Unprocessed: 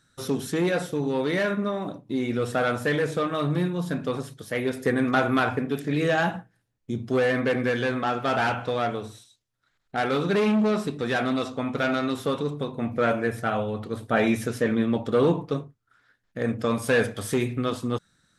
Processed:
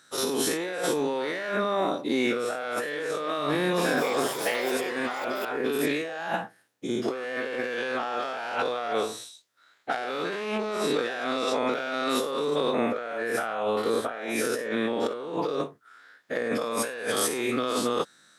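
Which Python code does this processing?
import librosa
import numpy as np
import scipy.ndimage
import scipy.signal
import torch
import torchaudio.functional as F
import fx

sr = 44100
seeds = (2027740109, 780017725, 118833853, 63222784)

y = fx.spec_dilate(x, sr, span_ms=120)
y = scipy.signal.sosfilt(scipy.signal.butter(2, 380.0, 'highpass', fs=sr, output='sos'), y)
y = fx.over_compress(y, sr, threshold_db=-29.0, ratio=-1.0)
y = fx.echo_pitch(y, sr, ms=285, semitones=6, count=3, db_per_echo=-6.0, at=(3.49, 5.86))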